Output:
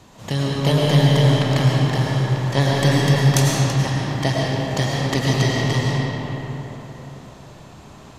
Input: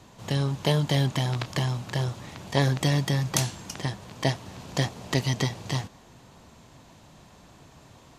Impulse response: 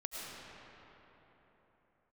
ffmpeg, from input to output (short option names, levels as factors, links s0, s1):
-filter_complex "[0:a]acontrast=66[s0];[1:a]atrim=start_sample=2205[s1];[s0][s1]afir=irnorm=-1:irlink=0,volume=1.19"